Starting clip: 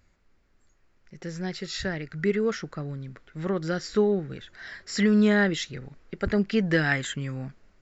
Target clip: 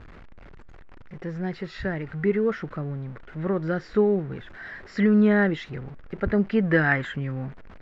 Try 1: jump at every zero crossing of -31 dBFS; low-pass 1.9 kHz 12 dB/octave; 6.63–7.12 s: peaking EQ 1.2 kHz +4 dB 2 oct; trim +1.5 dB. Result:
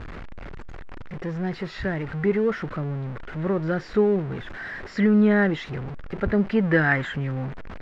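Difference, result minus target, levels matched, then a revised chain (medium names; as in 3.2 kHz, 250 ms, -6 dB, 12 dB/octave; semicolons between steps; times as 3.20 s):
jump at every zero crossing: distortion +9 dB
jump at every zero crossing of -40.5 dBFS; low-pass 1.9 kHz 12 dB/octave; 6.63–7.12 s: peaking EQ 1.2 kHz +4 dB 2 oct; trim +1.5 dB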